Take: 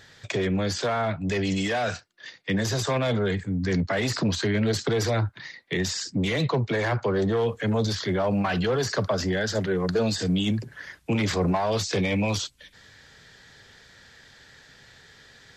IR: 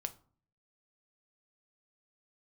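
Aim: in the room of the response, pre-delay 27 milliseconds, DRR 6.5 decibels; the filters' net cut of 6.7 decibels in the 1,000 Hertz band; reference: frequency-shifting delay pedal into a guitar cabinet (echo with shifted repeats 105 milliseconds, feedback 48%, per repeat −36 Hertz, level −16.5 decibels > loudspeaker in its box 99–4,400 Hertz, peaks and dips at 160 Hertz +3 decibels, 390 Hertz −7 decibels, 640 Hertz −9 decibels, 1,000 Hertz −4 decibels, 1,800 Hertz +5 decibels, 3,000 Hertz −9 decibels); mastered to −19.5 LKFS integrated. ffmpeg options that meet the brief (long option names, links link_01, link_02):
-filter_complex "[0:a]equalizer=frequency=1000:width_type=o:gain=-4.5,asplit=2[link_01][link_02];[1:a]atrim=start_sample=2205,adelay=27[link_03];[link_02][link_03]afir=irnorm=-1:irlink=0,volume=-5.5dB[link_04];[link_01][link_04]amix=inputs=2:normalize=0,asplit=5[link_05][link_06][link_07][link_08][link_09];[link_06]adelay=105,afreqshift=-36,volume=-16.5dB[link_10];[link_07]adelay=210,afreqshift=-72,volume=-22.9dB[link_11];[link_08]adelay=315,afreqshift=-108,volume=-29.3dB[link_12];[link_09]adelay=420,afreqshift=-144,volume=-35.6dB[link_13];[link_05][link_10][link_11][link_12][link_13]amix=inputs=5:normalize=0,highpass=99,equalizer=frequency=160:width_type=q:width=4:gain=3,equalizer=frequency=390:width_type=q:width=4:gain=-7,equalizer=frequency=640:width_type=q:width=4:gain=-9,equalizer=frequency=1000:width_type=q:width=4:gain=-4,equalizer=frequency=1800:width_type=q:width=4:gain=5,equalizer=frequency=3000:width_type=q:width=4:gain=-9,lowpass=frequency=4400:width=0.5412,lowpass=frequency=4400:width=1.3066,volume=7.5dB"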